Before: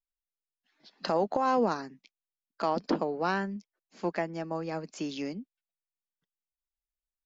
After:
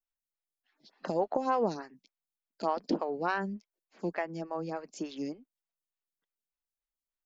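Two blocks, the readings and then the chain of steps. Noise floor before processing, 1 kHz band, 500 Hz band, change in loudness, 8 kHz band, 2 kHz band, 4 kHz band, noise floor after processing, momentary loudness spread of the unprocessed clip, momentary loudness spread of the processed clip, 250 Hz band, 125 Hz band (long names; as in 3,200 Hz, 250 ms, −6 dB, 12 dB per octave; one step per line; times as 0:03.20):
below −85 dBFS, −2.5 dB, −2.0 dB, −2.5 dB, can't be measured, −2.0 dB, −6.0 dB, below −85 dBFS, 11 LU, 13 LU, −2.5 dB, −3.0 dB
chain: phaser with staggered stages 3.4 Hz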